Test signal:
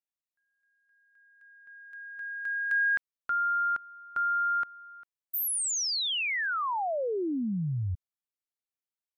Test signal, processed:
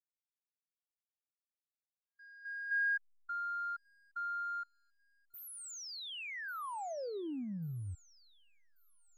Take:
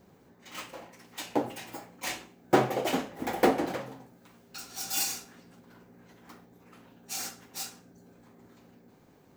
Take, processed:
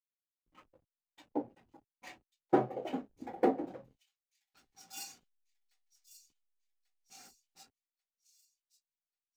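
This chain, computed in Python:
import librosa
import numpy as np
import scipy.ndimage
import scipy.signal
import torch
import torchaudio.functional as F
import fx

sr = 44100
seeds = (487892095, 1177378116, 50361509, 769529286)

p1 = fx.rev_double_slope(x, sr, seeds[0], early_s=0.39, late_s=1.5, knee_db=-18, drr_db=19.5)
p2 = fx.backlash(p1, sr, play_db=-34.5)
p3 = p2 + fx.echo_wet_highpass(p2, sr, ms=1140, feedback_pct=58, hz=4100.0, wet_db=-8.0, dry=0)
p4 = fx.spectral_expand(p3, sr, expansion=1.5)
y = F.gain(torch.from_numpy(p4), -5.5).numpy()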